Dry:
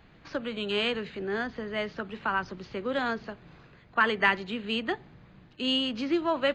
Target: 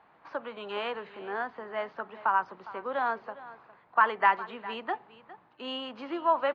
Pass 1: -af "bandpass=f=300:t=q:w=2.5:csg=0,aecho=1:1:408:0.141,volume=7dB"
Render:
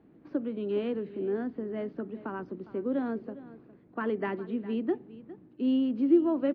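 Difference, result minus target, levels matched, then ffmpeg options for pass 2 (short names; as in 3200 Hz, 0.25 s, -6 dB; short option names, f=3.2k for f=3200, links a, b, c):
1000 Hz band -15.5 dB
-af "bandpass=f=930:t=q:w=2.5:csg=0,aecho=1:1:408:0.141,volume=7dB"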